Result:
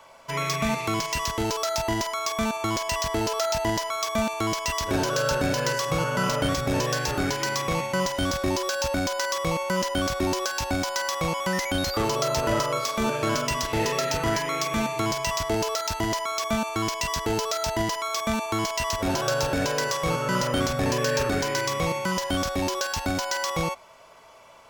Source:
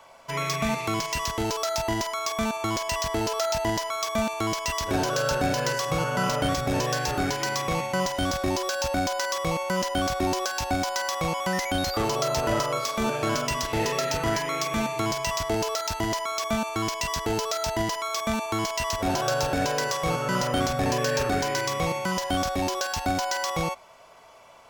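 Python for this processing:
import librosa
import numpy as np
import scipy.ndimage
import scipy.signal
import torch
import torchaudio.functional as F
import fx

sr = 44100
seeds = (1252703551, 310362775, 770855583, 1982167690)

y = fx.notch(x, sr, hz=730.0, q=12.0)
y = y * 10.0 ** (1.0 / 20.0)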